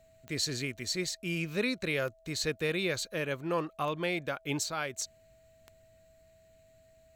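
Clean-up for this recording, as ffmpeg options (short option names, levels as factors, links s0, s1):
-af "adeclick=t=4,bandreject=f=650:w=30"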